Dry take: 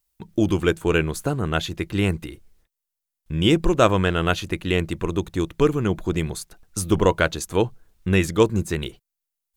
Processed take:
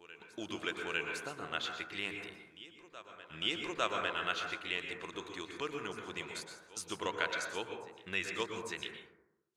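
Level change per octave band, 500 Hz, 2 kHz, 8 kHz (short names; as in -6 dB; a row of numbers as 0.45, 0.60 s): -19.5, -9.0, -13.5 dB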